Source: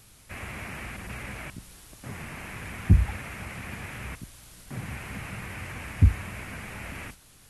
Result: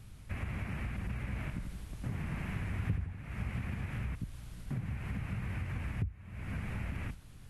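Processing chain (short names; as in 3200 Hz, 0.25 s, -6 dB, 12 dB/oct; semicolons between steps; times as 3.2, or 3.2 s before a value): tone controls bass +12 dB, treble -8 dB; compressor 16:1, threshold -29 dBFS, peak gain reduction 29 dB; 1.24–3.59 warbling echo 82 ms, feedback 57%, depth 112 cents, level -7 dB; gain -4 dB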